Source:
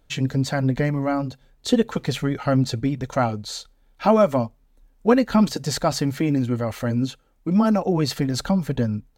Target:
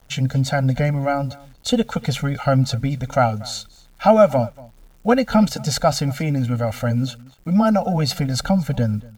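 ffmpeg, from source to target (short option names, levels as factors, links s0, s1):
-af "aecho=1:1:1.4:0.99,acrusher=bits=8:mix=0:aa=0.000001,aecho=1:1:236:0.075"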